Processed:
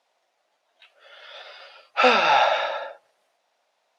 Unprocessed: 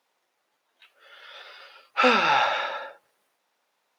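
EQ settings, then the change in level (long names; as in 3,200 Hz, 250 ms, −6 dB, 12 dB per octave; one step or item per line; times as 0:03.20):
high-frequency loss of the air 61 metres
parametric band 660 Hz +13 dB 0.64 octaves
high-shelf EQ 2,000 Hz +10 dB
−3.5 dB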